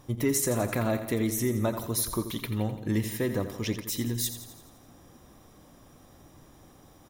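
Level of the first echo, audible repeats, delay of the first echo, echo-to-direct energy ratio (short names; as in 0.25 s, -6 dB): -11.0 dB, 6, 85 ms, -9.0 dB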